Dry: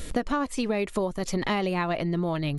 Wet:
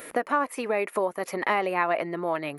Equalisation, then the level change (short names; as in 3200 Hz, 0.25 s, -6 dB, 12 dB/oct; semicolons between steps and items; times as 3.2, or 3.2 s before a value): HPF 490 Hz 12 dB/oct; band shelf 5000 Hz -13.5 dB; +5.0 dB